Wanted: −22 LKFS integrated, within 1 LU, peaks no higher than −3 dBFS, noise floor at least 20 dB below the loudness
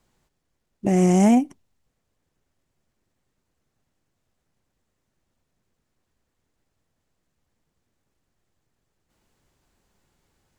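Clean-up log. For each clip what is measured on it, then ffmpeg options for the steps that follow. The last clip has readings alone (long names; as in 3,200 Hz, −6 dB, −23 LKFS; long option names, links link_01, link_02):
integrated loudness −19.0 LKFS; sample peak −7.0 dBFS; target loudness −22.0 LKFS
→ -af "volume=-3dB"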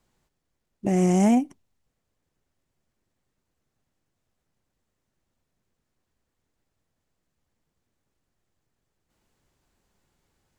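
integrated loudness −22.0 LKFS; sample peak −10.0 dBFS; background noise floor −80 dBFS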